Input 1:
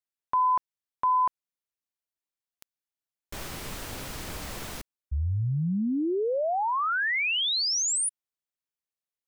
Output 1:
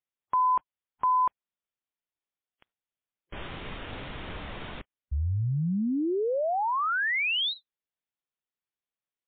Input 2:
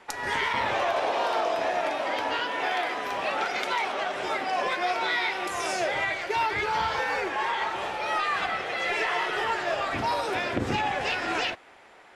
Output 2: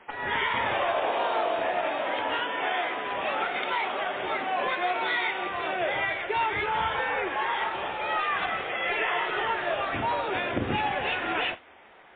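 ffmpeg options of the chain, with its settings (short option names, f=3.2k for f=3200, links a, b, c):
-ar 8000 -c:a libmp3lame -b:a 16k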